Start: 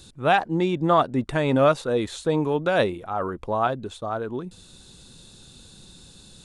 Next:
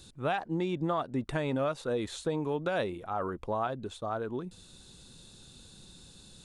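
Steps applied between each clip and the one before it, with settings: compression 6:1, threshold -22 dBFS, peak gain reduction 9 dB; trim -5 dB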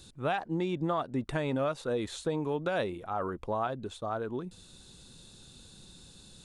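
no audible change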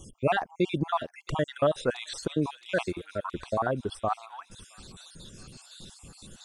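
random holes in the spectrogram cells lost 55%; feedback echo behind a high-pass 669 ms, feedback 60%, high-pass 2.8 kHz, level -10.5 dB; trim +8 dB

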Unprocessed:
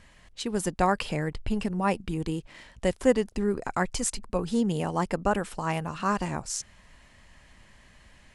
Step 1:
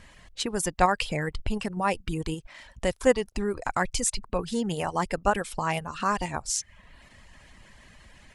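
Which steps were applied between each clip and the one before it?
reverb removal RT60 0.64 s; dynamic bell 250 Hz, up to -7 dB, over -40 dBFS, Q 0.71; in parallel at +0.5 dB: level held to a coarse grid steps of 12 dB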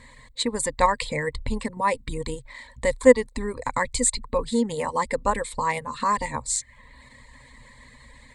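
rippled EQ curve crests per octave 1, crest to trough 15 dB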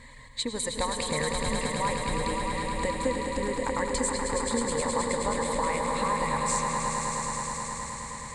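compression, threshold -28 dBFS, peak gain reduction 19 dB; echo with a slow build-up 106 ms, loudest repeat 5, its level -7 dB; reverberation RT60 5.5 s, pre-delay 74 ms, DRR 7 dB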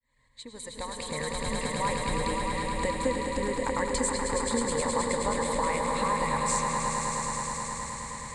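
fade-in on the opening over 1.98 s

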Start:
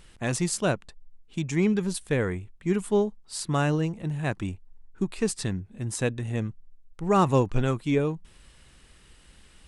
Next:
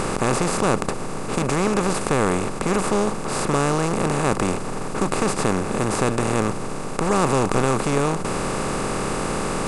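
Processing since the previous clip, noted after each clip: spectral levelling over time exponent 0.2; trim -3.5 dB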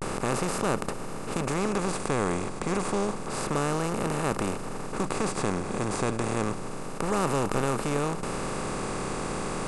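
vibrato 0.3 Hz 54 cents; trim -7 dB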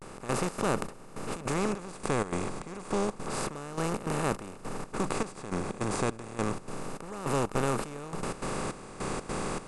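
trance gate "...xx.xxx" 155 bpm -12 dB; trim -1.5 dB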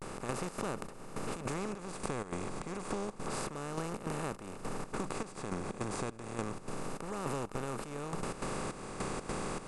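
compression, threshold -36 dBFS, peak gain reduction 13 dB; trim +2 dB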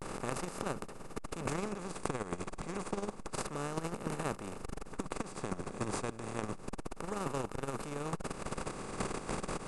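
transformer saturation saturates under 470 Hz; trim +3.5 dB

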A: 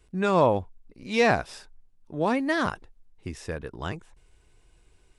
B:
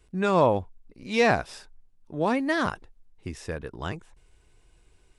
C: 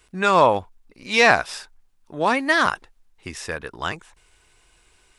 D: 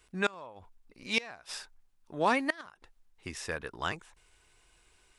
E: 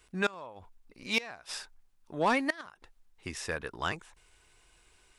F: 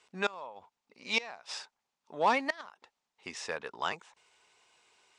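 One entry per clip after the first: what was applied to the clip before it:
no audible change
FFT filter 120 Hz 0 dB, 470 Hz +5 dB, 1.2 kHz +13 dB; trim -3 dB
inverted gate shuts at -8 dBFS, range -25 dB; trim -6.5 dB
saturation -18.5 dBFS, distortion -18 dB; trim +1.5 dB
cabinet simulation 270–7400 Hz, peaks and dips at 320 Hz -8 dB, 880 Hz +4 dB, 1.6 kHz -4 dB

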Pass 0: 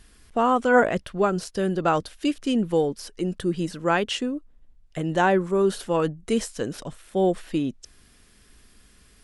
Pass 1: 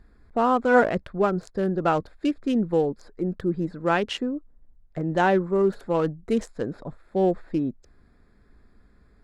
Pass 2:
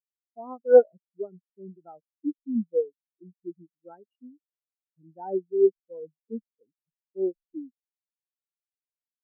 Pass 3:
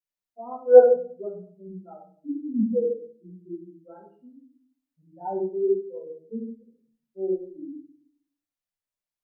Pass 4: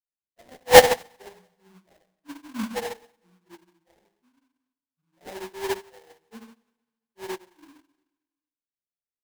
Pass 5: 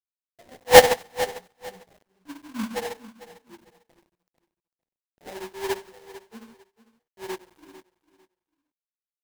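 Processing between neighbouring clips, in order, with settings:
local Wiener filter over 15 samples; treble shelf 8.1 kHz -10 dB; band-stop 1.1 kHz, Q 24
spectral contrast expander 4:1
simulated room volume 490 m³, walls furnished, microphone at 5.9 m; trim -6 dB
sample-rate reducer 1.3 kHz, jitter 20%; feedback delay 227 ms, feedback 43%, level -24 dB; upward expansion 1.5:1, over -44 dBFS; trim +1 dB
word length cut 10-bit, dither none; feedback delay 449 ms, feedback 23%, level -16 dB

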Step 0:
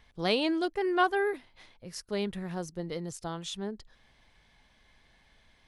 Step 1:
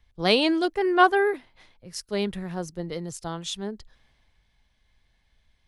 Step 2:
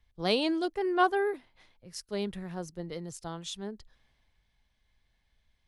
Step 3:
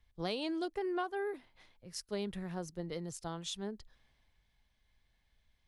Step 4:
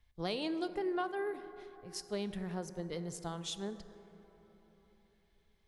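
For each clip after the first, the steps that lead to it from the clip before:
three bands expanded up and down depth 40%; trim +5 dB
dynamic bell 2 kHz, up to -4 dB, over -37 dBFS, Q 1; trim -6 dB
compression 16:1, threshold -31 dBFS, peak gain reduction 13.5 dB; trim -1.5 dB
plate-style reverb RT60 3.9 s, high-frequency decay 0.3×, DRR 11 dB

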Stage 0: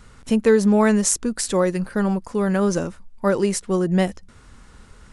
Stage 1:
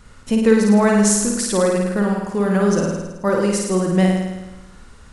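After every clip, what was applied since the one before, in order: flutter echo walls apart 9.2 m, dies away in 1.1 s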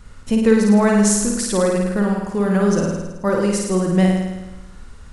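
bass shelf 100 Hz +7.5 dB; trim -1 dB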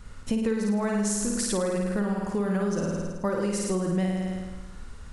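compression, threshold -21 dBFS, peak gain reduction 12.5 dB; trim -2.5 dB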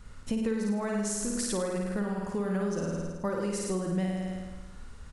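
delay 95 ms -13 dB; trim -4 dB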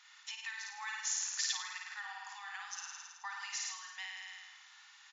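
resonant high shelf 1.8 kHz +7 dB, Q 1.5; small resonant body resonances 1.8/3.5 kHz, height 11 dB; FFT band-pass 760–7300 Hz; trim -4.5 dB

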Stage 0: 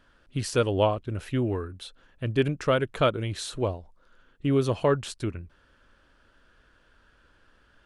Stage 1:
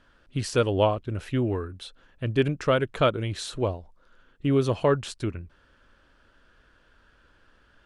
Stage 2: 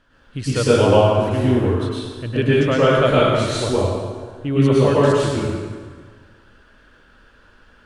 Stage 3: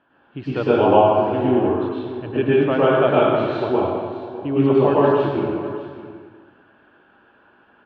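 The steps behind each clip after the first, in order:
Bessel low-pass 9.4 kHz; trim +1 dB
plate-style reverb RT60 1.6 s, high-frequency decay 0.8×, pre-delay 95 ms, DRR -8.5 dB
cabinet simulation 200–2600 Hz, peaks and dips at 230 Hz -3 dB, 350 Hz +4 dB, 500 Hz -6 dB, 790 Hz +7 dB, 1.3 kHz -4 dB, 2 kHz -10 dB; delay 608 ms -14.5 dB; trim +1 dB

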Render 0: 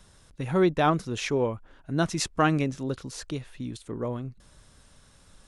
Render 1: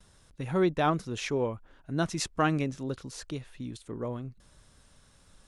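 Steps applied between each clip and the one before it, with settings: gate with hold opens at -50 dBFS; trim -3.5 dB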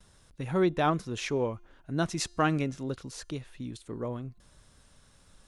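feedback comb 350 Hz, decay 0.92 s, mix 30%; trim +3 dB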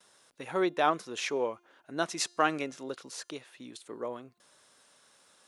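high-pass 420 Hz 12 dB/octave; trim +1.5 dB

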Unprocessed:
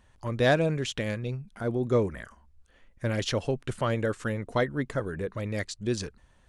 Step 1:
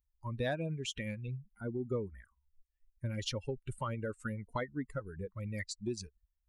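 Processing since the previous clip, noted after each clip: expander on every frequency bin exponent 2; compression 3:1, threshold -36 dBFS, peak gain reduction 12 dB; trim +1 dB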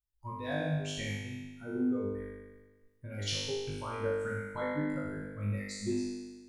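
tremolo saw up 2.7 Hz, depth 80%; flutter echo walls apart 3.4 m, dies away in 1.3 s; reverberation, pre-delay 56 ms, DRR 8 dB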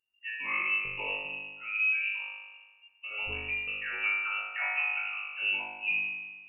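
frequency inversion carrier 2.8 kHz; trim +2.5 dB

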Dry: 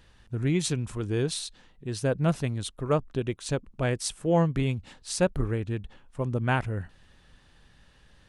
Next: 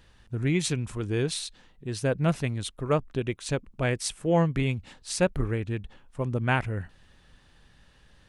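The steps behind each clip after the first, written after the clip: dynamic bell 2.2 kHz, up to +5 dB, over -50 dBFS, Q 1.9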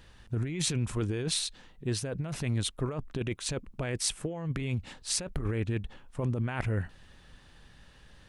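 compressor with a negative ratio -30 dBFS, ratio -1; trim -1 dB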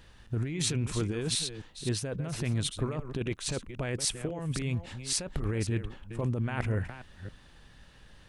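chunks repeated in reverse 270 ms, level -10.5 dB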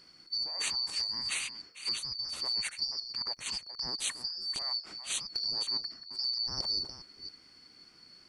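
four frequency bands reordered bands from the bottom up 2341; trim -3.5 dB

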